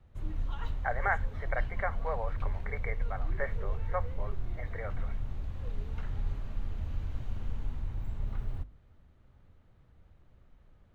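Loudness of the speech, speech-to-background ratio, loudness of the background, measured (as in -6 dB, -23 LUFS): -38.0 LUFS, 1.5 dB, -39.5 LUFS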